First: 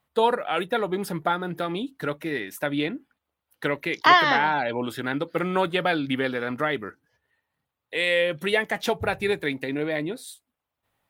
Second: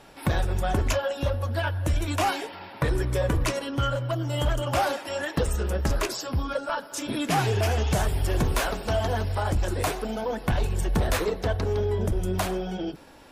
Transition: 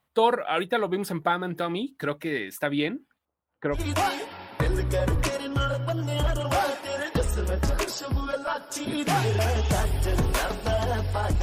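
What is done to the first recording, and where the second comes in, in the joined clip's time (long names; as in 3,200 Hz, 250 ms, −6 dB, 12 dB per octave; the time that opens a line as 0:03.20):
first
0:03.25–0:03.81: low-pass filter 1,200 Hz 12 dB per octave
0:03.76: continue with second from 0:01.98, crossfade 0.10 s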